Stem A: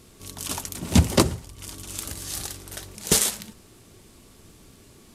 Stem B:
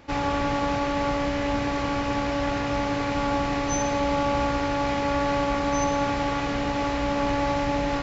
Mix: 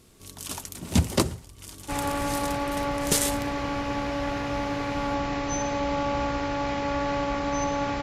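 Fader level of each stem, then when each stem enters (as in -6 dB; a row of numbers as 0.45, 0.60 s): -4.5, -3.0 dB; 0.00, 1.80 s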